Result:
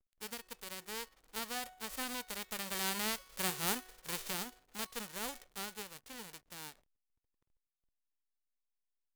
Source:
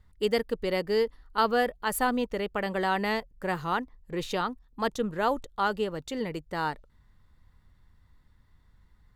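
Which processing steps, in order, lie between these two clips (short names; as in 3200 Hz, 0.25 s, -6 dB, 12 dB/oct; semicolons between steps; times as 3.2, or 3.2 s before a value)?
spectral whitening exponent 0.1; Doppler pass-by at 3.53, 5 m/s, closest 2.9 m; in parallel at 0 dB: compressor 5:1, threshold -46 dBFS, peak gain reduction 20.5 dB; on the sum: resonator 370 Hz, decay 0.87 s, mix 60%; backlash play -56 dBFS; gain +1 dB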